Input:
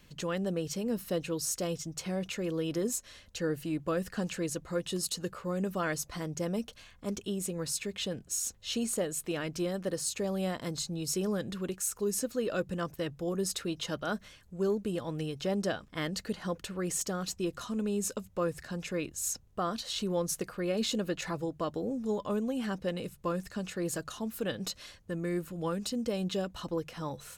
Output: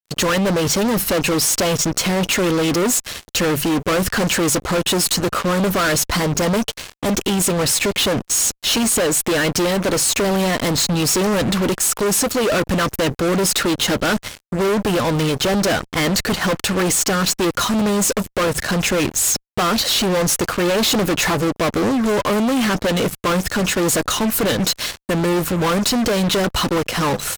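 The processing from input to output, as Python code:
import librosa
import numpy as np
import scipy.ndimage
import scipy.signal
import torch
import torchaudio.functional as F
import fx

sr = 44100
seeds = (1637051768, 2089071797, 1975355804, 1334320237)

y = fx.hpss(x, sr, part='harmonic', gain_db=-6)
y = fx.fuzz(y, sr, gain_db=48.0, gate_db=-53.0)
y = F.gain(torch.from_numpy(y), -2.5).numpy()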